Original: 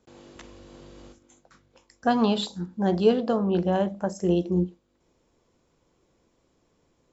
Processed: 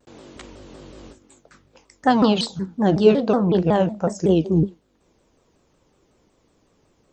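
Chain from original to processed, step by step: shaped vibrato saw down 5.4 Hz, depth 250 cents; gain +5.5 dB

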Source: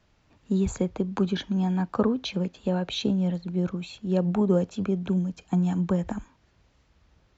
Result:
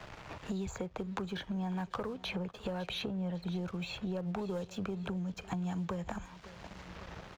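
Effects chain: high shelf 4000 Hz -9.5 dB; compressor 6:1, threshold -37 dBFS, peak gain reduction 18 dB; bell 250 Hz -12.5 dB 1 oct; notches 50/100 Hz; feedback echo 0.55 s, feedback 41%, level -22.5 dB; sample leveller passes 2; three-band squash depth 70%; gain +1.5 dB

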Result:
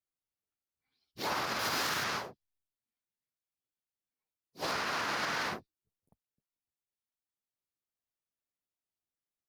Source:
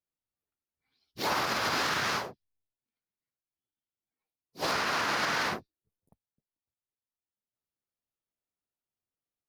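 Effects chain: 1.59–2.04 high shelf 7800 Hz +11.5 dB; gain -4.5 dB

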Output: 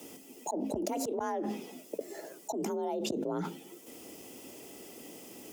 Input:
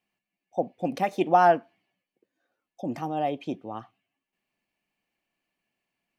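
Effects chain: HPF 100 Hz 6 dB/oct; band shelf 1600 Hz -15 dB 2.8 oct; notches 50/100/150/200 Hz; auto swell 0.696 s; wide varispeed 1.12×; frequency shift +44 Hz; fast leveller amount 100%

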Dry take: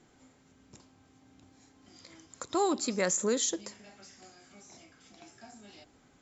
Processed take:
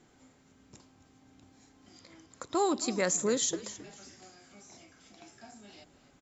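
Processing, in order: 1.99–2.55 high shelf 3800 Hz -7 dB; on a send: frequency-shifting echo 0.268 s, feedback 33%, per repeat -46 Hz, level -16 dB

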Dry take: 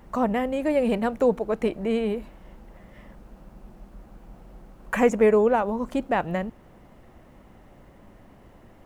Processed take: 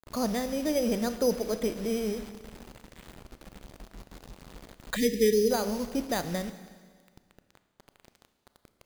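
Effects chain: careless resampling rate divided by 8×, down filtered, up hold; bell 950 Hz -6.5 dB 0.94 oct; bit-crush 7-bit; Schroeder reverb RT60 1.7 s, combs from 26 ms, DRR 10.5 dB; spectral gain 4.96–5.51, 480–1700 Hz -30 dB; gain -4 dB

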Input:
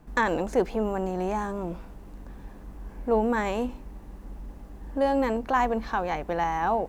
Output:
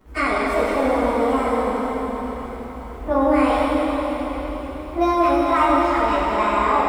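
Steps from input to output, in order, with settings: pitch shift by moving bins +4 st; low shelf 220 Hz -3 dB; reverb RT60 4.9 s, pre-delay 5 ms, DRR -5.5 dB; gain +4.5 dB

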